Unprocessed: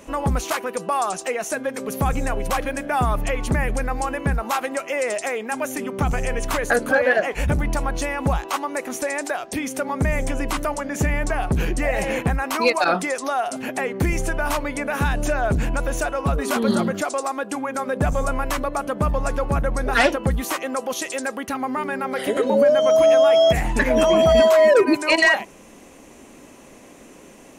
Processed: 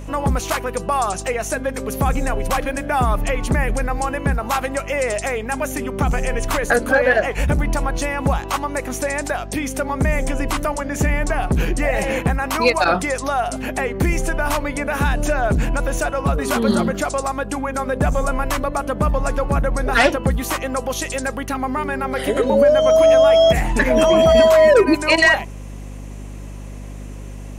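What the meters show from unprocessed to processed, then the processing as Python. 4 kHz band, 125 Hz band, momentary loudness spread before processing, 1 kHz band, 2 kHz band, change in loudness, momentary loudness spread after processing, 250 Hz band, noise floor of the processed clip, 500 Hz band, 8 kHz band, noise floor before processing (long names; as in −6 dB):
+2.5 dB, +3.0 dB, 11 LU, +2.5 dB, +2.5 dB, +2.5 dB, 11 LU, +2.5 dB, −32 dBFS, +2.5 dB, +2.5 dB, −46 dBFS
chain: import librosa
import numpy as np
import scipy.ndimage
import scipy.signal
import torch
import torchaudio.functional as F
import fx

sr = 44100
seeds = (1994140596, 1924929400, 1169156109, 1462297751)

y = fx.add_hum(x, sr, base_hz=50, snr_db=14)
y = y * librosa.db_to_amplitude(2.5)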